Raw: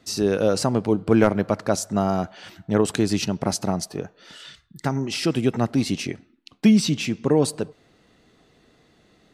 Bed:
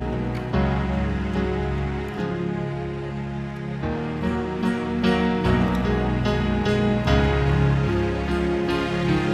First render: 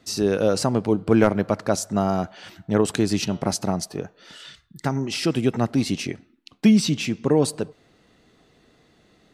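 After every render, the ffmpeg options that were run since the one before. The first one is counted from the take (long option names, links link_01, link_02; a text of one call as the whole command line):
ffmpeg -i in.wav -filter_complex "[0:a]asettb=1/sr,asplit=3[link_01][link_02][link_03];[link_01]atrim=end=3.054[link_04];[link_02]atrim=start=3.05:end=3.45,asetpts=PTS-STARTPTS,afade=type=in:duration=0.004:curve=qsin,afade=type=out:start_time=0.396:duration=0.004:curve=qsin,bandreject=frequency=117.3:width_type=h:width=4,bandreject=frequency=234.6:width_type=h:width=4,bandreject=frequency=351.9:width_type=h:width=4,bandreject=frequency=469.2:width_type=h:width=4,bandreject=frequency=586.5:width_type=h:width=4,bandreject=frequency=703.8:width_type=h:width=4,bandreject=frequency=821.1:width_type=h:width=4,bandreject=frequency=938.4:width_type=h:width=4,bandreject=frequency=1055.7:width_type=h:width=4,bandreject=frequency=1173:width_type=h:width=4,bandreject=frequency=1290.3:width_type=h:width=4,bandreject=frequency=1407.6:width_type=h:width=4,bandreject=frequency=1524.9:width_type=h:width=4,bandreject=frequency=1642.2:width_type=h:width=4,bandreject=frequency=1759.5:width_type=h:width=4,bandreject=frequency=1876.8:width_type=h:width=4,bandreject=frequency=1994.1:width_type=h:width=4,bandreject=frequency=2111.4:width_type=h:width=4,bandreject=frequency=2228.7:width_type=h:width=4,bandreject=frequency=2346:width_type=h:width=4,bandreject=frequency=2463.3:width_type=h:width=4,bandreject=frequency=2580.6:width_type=h:width=4,bandreject=frequency=2697.9:width_type=h:width=4,bandreject=frequency=2815.2:width_type=h:width=4,bandreject=frequency=2932.5:width_type=h:width=4,bandreject=frequency=3049.8:width_type=h:width=4,bandreject=frequency=3167.1:width_type=h:width=4,bandreject=frequency=3284.4:width_type=h:width=4,bandreject=frequency=3401.7:width_type=h:width=4,bandreject=frequency=3519:width_type=h:width=4,bandreject=frequency=3636.3:width_type=h:width=4,bandreject=frequency=3753.6:width_type=h:width=4,bandreject=frequency=3870.9:width_type=h:width=4,bandreject=frequency=3988.2:width_type=h:width=4[link_05];[link_03]atrim=start=3.446[link_06];[link_04][link_05]acrossfade=duration=0.004:curve1=hsin:curve2=qsin[link_07];[link_07][link_06]acrossfade=duration=0.004:curve1=qsin:curve2=hsin" out.wav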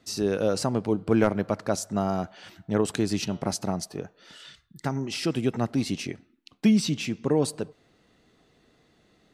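ffmpeg -i in.wav -af "volume=-4.5dB" out.wav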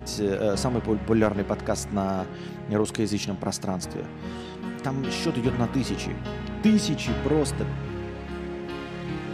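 ffmpeg -i in.wav -i bed.wav -filter_complex "[1:a]volume=-11dB[link_01];[0:a][link_01]amix=inputs=2:normalize=0" out.wav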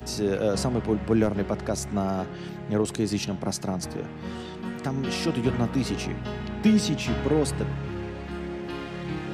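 ffmpeg -i in.wav -filter_complex "[0:a]acrossover=split=140|550|3900[link_01][link_02][link_03][link_04];[link_03]alimiter=limit=-23dB:level=0:latency=1:release=168[link_05];[link_04]acompressor=mode=upward:threshold=-59dB:ratio=2.5[link_06];[link_01][link_02][link_05][link_06]amix=inputs=4:normalize=0" out.wav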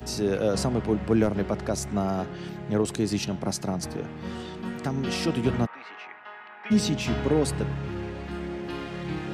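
ffmpeg -i in.wav -filter_complex "[0:a]asplit=3[link_01][link_02][link_03];[link_01]afade=type=out:start_time=5.65:duration=0.02[link_04];[link_02]asuperpass=centerf=1400:order=4:qfactor=1,afade=type=in:start_time=5.65:duration=0.02,afade=type=out:start_time=6.7:duration=0.02[link_05];[link_03]afade=type=in:start_time=6.7:duration=0.02[link_06];[link_04][link_05][link_06]amix=inputs=3:normalize=0" out.wav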